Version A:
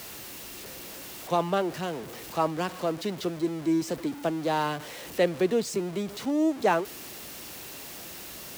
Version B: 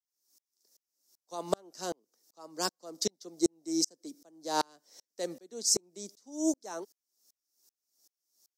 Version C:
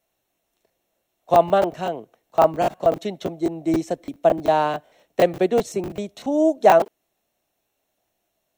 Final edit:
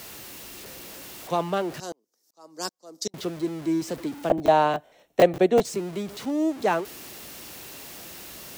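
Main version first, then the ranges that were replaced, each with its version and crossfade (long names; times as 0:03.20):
A
0:01.80–0:03.14: punch in from B
0:04.30–0:05.65: punch in from C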